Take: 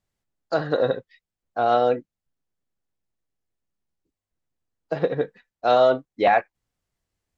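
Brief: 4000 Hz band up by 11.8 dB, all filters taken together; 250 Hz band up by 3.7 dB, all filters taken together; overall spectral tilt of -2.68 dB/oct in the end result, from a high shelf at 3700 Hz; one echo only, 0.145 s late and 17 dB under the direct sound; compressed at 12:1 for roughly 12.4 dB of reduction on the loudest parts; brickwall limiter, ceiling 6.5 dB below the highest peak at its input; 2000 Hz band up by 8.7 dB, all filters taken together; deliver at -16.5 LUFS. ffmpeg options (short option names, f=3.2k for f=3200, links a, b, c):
-af "equalizer=f=250:t=o:g=4.5,equalizer=f=2k:t=o:g=8.5,highshelf=f=3.7k:g=5,equalizer=f=4k:t=o:g=8,acompressor=threshold=-23dB:ratio=12,alimiter=limit=-18dB:level=0:latency=1,aecho=1:1:145:0.141,volume=14.5dB"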